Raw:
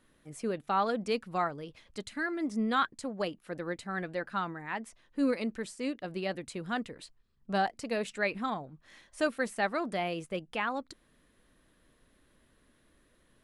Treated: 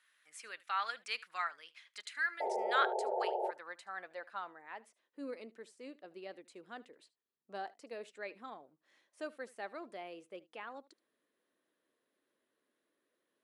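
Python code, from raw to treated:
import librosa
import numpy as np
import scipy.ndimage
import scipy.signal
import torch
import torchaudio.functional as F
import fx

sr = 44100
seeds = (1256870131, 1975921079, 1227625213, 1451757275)

y = np.diff(x, prepend=0.0)
y = fx.filter_sweep_bandpass(y, sr, from_hz=1700.0, to_hz=370.0, start_s=2.63, end_s=5.21, q=1.4)
y = fx.spec_paint(y, sr, seeds[0], shape='noise', start_s=2.4, length_s=1.11, low_hz=360.0, high_hz=920.0, level_db=-49.0)
y = y + 10.0 ** (-21.5 / 20.0) * np.pad(y, (int(75 * sr / 1000.0), 0))[:len(y)]
y = F.gain(torch.from_numpy(y), 13.5).numpy()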